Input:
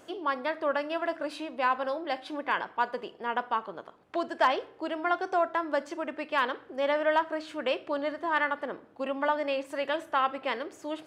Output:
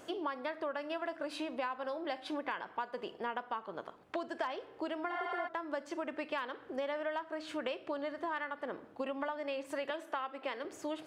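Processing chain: 5.14–5.45 s: spectral replace 680–7900 Hz before; 9.90–10.65 s: high-pass 230 Hz 24 dB/octave; compression 10:1, threshold -35 dBFS, peak gain reduction 16 dB; trim +1 dB

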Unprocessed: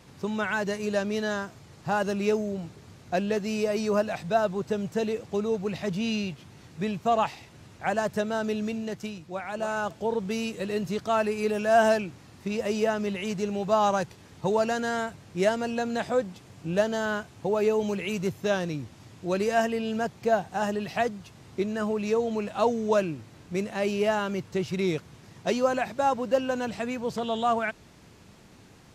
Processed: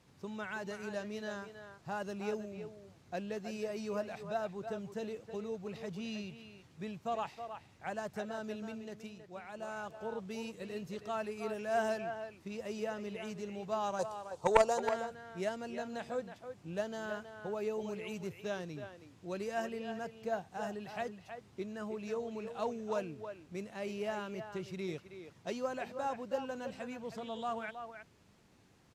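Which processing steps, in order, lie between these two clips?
13.99–14.80 s: graphic EQ 250/500/1000/2000/4000/8000 Hz -5/+9/+11/-11/+3/+11 dB; Chebyshev shaper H 3 -10 dB, 5 -25 dB, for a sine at -4.5 dBFS; speakerphone echo 320 ms, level -8 dB; trim -3.5 dB

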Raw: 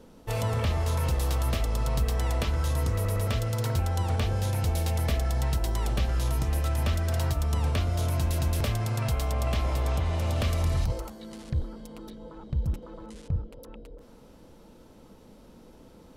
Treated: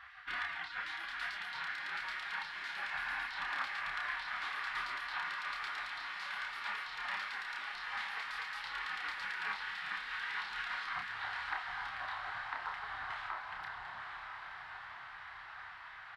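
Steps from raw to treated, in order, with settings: band-pass 270–7600 Hz; distance through air 440 m; compression 2.5:1, threshold -42 dBFS, peak gain reduction 8.5 dB; spectral gate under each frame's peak -25 dB weak; high-order bell 1.2 kHz +12.5 dB; doubling 30 ms -4 dB; echo that smears into a reverb 942 ms, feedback 64%, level -6 dB; trim +13 dB

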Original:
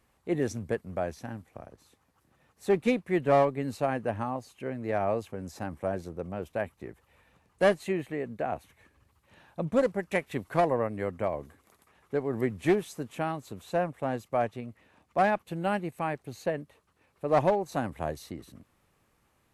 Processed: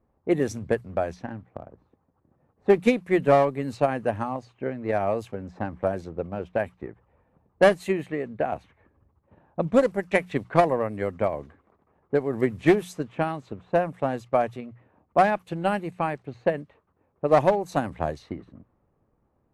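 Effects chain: level-controlled noise filter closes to 710 Hz, open at -26 dBFS; transient shaper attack +6 dB, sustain +1 dB; hum notches 60/120/180 Hz; trim +2 dB

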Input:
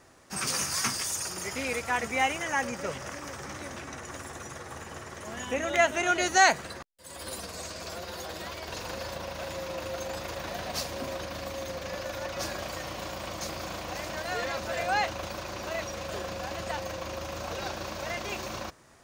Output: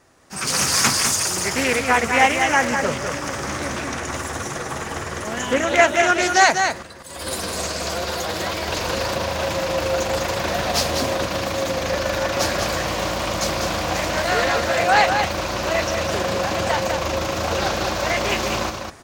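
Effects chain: delay 200 ms -6 dB; level rider gain up to 12.5 dB; loudspeaker Doppler distortion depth 0.39 ms

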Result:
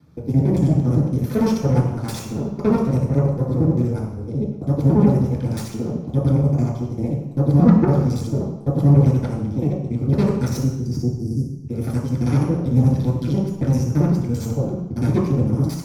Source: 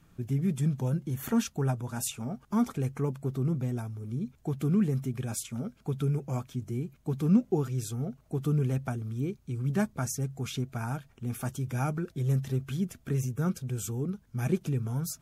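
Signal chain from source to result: time reversed locally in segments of 54 ms; spectral selection erased 10.16–11.21 s, 300–4700 Hz; Chebyshev shaper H 8 -13 dB, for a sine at -13 dBFS; speed mistake 25 fps video run at 24 fps; reverberation RT60 0.85 s, pre-delay 3 ms, DRR -4.5 dB; trim -7 dB

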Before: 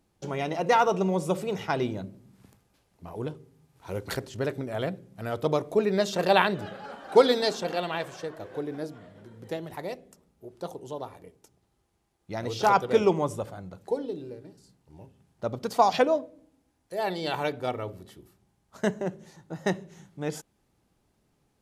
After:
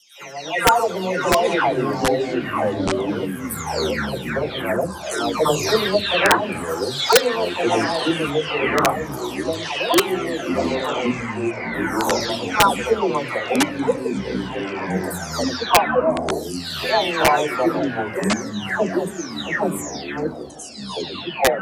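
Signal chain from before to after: delay that grows with frequency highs early, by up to 600 ms; high-pass 770 Hz 6 dB/octave; gate with hold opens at -57 dBFS; level rider gain up to 15 dB; integer overflow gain 4.5 dB; ever faster or slower copies 427 ms, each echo -5 st, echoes 3

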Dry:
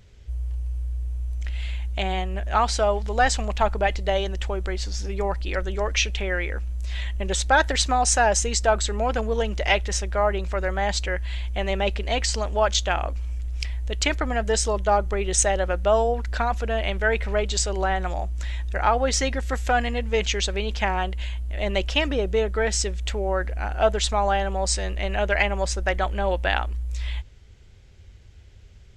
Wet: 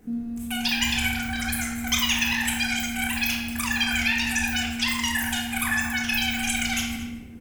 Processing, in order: wide varispeed 3.91×; echo from a far wall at 39 m, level -14 dB; simulated room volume 600 m³, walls mixed, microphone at 1.9 m; trim -5.5 dB

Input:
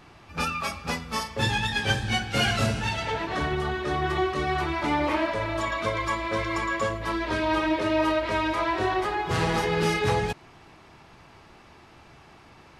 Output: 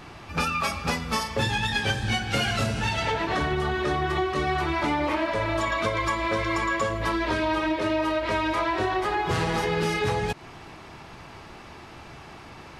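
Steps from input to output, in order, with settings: compression, threshold -30 dBFS, peak gain reduction 11 dB; trim +7.5 dB

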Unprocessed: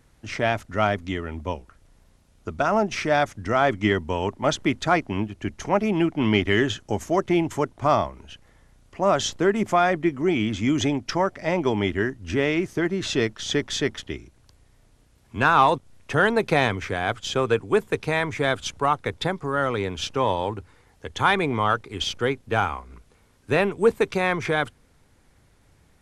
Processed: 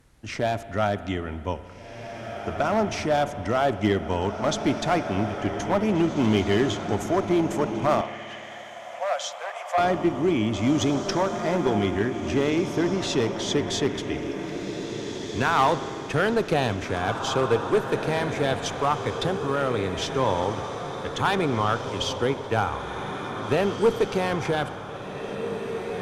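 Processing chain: dynamic bell 2 kHz, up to -6 dB, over -35 dBFS, Q 1; echo that smears into a reverb 1855 ms, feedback 43%, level -8 dB; one-sided clip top -16.5 dBFS; 8.01–9.78 s: rippled Chebyshev high-pass 500 Hz, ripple 6 dB; spring tank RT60 2.7 s, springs 55 ms, chirp 65 ms, DRR 13.5 dB

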